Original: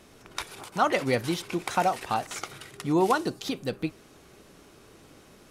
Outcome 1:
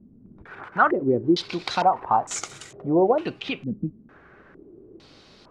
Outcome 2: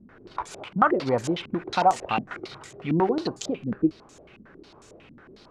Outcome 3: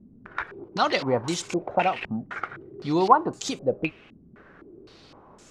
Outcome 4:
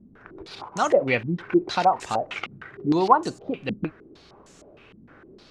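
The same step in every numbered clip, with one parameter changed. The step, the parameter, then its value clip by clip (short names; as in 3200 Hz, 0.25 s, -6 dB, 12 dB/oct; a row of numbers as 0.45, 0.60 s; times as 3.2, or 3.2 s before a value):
stepped low-pass, rate: 2.2, 11, 3.9, 6.5 Hz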